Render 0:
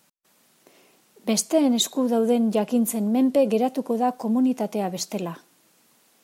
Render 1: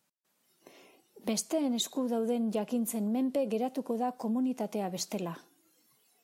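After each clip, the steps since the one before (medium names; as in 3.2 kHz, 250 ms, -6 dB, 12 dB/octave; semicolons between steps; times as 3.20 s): spectral noise reduction 14 dB; compression 2:1, threshold -36 dBFS, peak gain reduction 12 dB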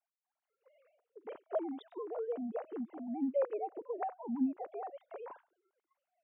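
formants replaced by sine waves; low-pass 1.1 kHz 12 dB/octave; bass shelf 410 Hz -11.5 dB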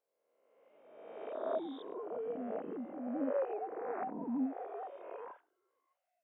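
reverse spectral sustain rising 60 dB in 1.42 s; trim -4 dB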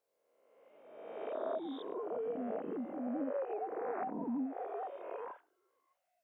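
compression, threshold -37 dBFS, peak gain reduction 7 dB; trim +3 dB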